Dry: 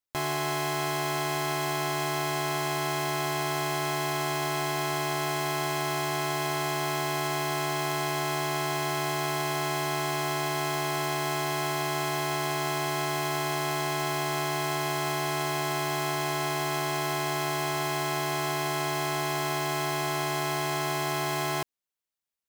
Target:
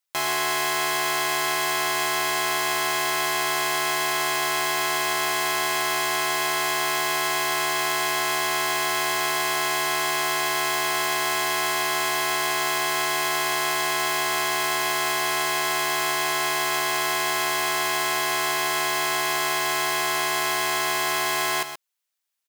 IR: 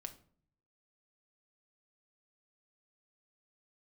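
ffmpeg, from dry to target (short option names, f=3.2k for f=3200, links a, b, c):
-filter_complex "[0:a]highpass=f=1.2k:p=1,asplit=2[a][b];[b]aecho=0:1:127:0.316[c];[a][c]amix=inputs=2:normalize=0,volume=8.5dB"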